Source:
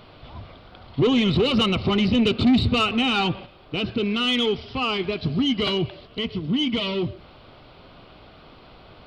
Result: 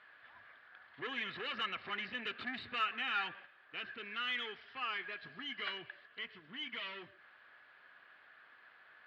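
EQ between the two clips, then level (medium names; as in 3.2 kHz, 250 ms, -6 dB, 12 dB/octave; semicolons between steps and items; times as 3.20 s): band-pass filter 1.7 kHz, Q 17; +9.5 dB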